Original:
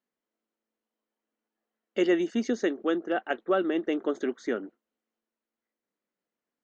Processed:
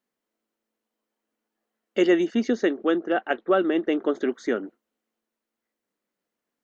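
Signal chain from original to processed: 2.25–4.31 s: low-pass 5.1 kHz 12 dB/octave; trim +4.5 dB

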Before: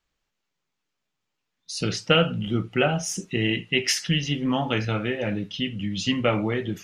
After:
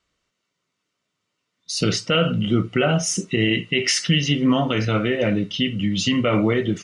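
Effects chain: peak limiter -15.5 dBFS, peak gain reduction 11 dB; comb of notches 830 Hz; resampled via 22.05 kHz; trim +7.5 dB

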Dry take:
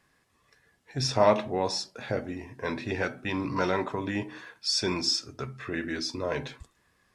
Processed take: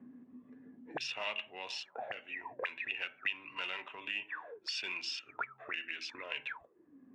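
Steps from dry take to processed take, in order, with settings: local Wiener filter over 9 samples; auto-wah 240–2800 Hz, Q 19, up, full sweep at -29.5 dBFS; three bands compressed up and down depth 70%; trim +17 dB

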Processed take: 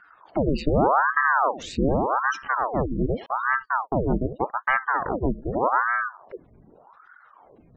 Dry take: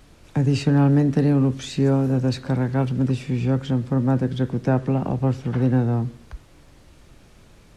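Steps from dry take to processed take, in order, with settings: spectral gate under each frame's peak -20 dB strong; 3.26–4.87 s: gate -24 dBFS, range -38 dB; ring modulator with a swept carrier 770 Hz, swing 90%, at 0.84 Hz

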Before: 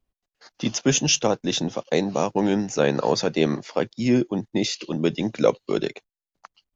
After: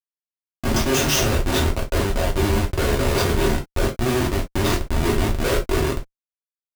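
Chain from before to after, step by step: spectral sustain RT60 0.48 s; Schmitt trigger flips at -20.5 dBFS; gated-style reverb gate 80 ms falling, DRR -1.5 dB

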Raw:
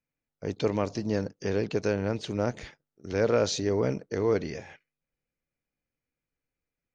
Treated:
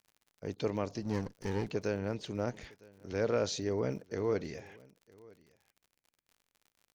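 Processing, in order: 1.02–1.67 s: comb filter that takes the minimum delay 0.5 ms; delay 958 ms -24 dB; crackle 56 per s -44 dBFS; trim -6.5 dB

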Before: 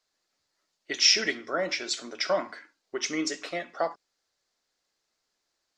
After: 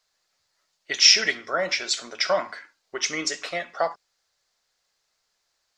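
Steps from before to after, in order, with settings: peaking EQ 290 Hz -10.5 dB 1.1 oct; trim +5.5 dB

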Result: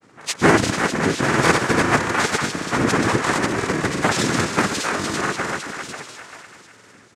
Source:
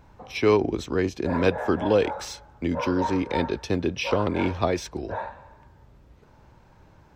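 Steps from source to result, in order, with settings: treble shelf 4.2 kHz +9 dB; delay 803 ms -7.5 dB; noise-vocoded speech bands 3; on a send: thinning echo 254 ms, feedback 63%, high-pass 930 Hz, level -3 dB; on the sum: granulator, pitch spread up and down by 0 st; trim +5 dB

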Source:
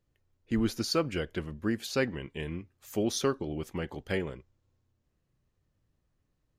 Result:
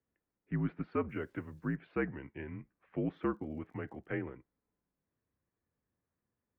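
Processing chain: mistuned SSB -64 Hz 160–2300 Hz; 1.09–1.76 s: word length cut 12-bit, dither none; 3.10–4.07 s: crackle 64 per s -59 dBFS; trim -5 dB

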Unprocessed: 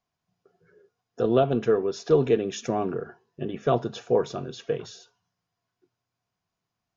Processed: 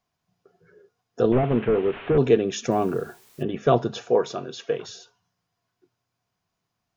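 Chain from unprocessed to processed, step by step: 1.32–2.18 s: one-bit delta coder 16 kbps, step -37 dBFS; 2.71–3.43 s: word length cut 10-bit, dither triangular; 4.09–4.89 s: high-pass 350 Hz 6 dB/octave; trim +4 dB

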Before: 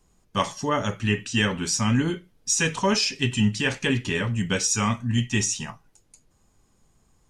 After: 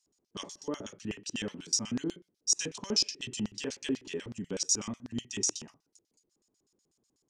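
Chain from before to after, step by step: treble shelf 8.4 kHz +10.5 dB; LFO band-pass square 8.1 Hz 340–5200 Hz; trim -2.5 dB

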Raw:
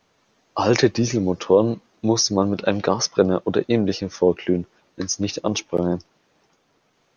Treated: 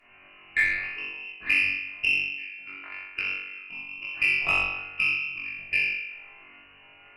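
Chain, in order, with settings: inverted gate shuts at -15 dBFS, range -34 dB; flutter echo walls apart 3.6 m, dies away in 1 s; frequency inversion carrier 2.9 kHz; reverberation RT60 0.45 s, pre-delay 3 ms, DRR -4 dB; Chebyshev shaper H 5 -43 dB, 8 -32 dB, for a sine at -9 dBFS

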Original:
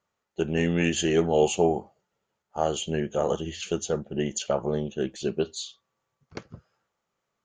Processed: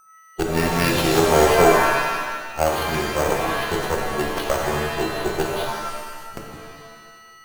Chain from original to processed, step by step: whistle 1.3 kHz -49 dBFS; Chebyshev shaper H 6 -15 dB, 7 -25 dB, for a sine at -8.5 dBFS; careless resampling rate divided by 6×, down none, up hold; pitch-shifted reverb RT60 1.4 s, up +7 st, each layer -2 dB, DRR 1.5 dB; trim +3 dB

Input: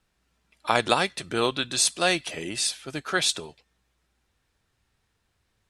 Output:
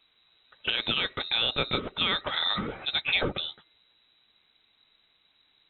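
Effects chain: compression 5:1, threshold -26 dBFS, peak gain reduction 10 dB; peak limiter -19.5 dBFS, peak gain reduction 8.5 dB; frequency inversion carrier 3.9 kHz; trim +6 dB

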